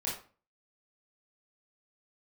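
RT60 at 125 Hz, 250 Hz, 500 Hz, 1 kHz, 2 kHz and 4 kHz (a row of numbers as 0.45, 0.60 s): 0.45, 0.45, 0.40, 0.40, 0.35, 0.30 s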